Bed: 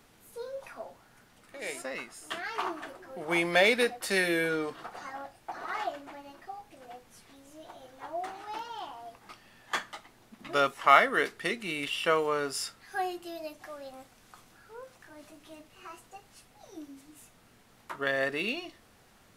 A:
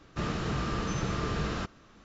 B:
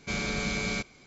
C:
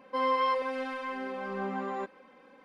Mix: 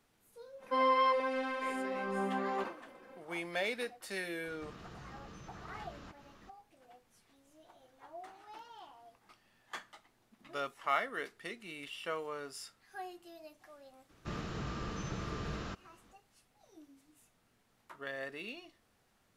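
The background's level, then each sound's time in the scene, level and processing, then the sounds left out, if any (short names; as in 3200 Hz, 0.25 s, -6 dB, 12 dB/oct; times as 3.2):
bed -12.5 dB
0.58 add C -1 dB, fades 0.05 s + sustainer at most 140 dB/s
4.46 add A -3 dB + compressor 5:1, threshold -47 dBFS
14.09 add A -8.5 dB
not used: B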